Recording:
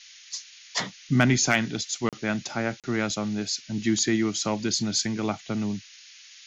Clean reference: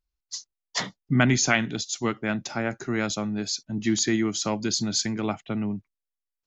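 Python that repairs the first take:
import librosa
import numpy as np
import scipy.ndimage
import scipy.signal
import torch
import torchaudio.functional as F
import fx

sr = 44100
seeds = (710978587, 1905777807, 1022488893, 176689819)

y = fx.fix_declip(x, sr, threshold_db=-10.5)
y = fx.fix_interpolate(y, sr, at_s=(2.09, 2.8), length_ms=37.0)
y = fx.noise_reduce(y, sr, print_start_s=5.81, print_end_s=6.31, reduce_db=30.0)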